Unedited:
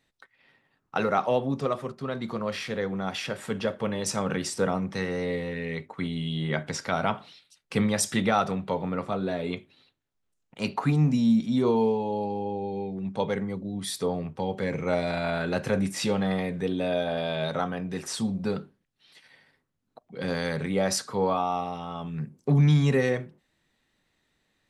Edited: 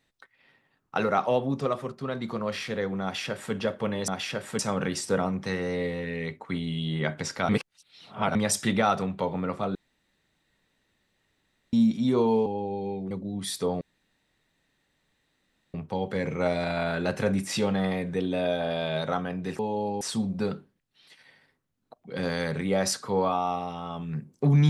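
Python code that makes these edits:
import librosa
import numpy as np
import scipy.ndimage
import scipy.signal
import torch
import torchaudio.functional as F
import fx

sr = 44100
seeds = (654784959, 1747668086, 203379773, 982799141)

y = fx.edit(x, sr, fx.duplicate(start_s=3.03, length_s=0.51, to_s=4.08),
    fx.reverse_span(start_s=6.98, length_s=0.86),
    fx.room_tone_fill(start_s=9.24, length_s=1.98),
    fx.move(start_s=11.95, length_s=0.42, to_s=18.06),
    fx.cut(start_s=13.02, length_s=0.49),
    fx.insert_room_tone(at_s=14.21, length_s=1.93), tone=tone)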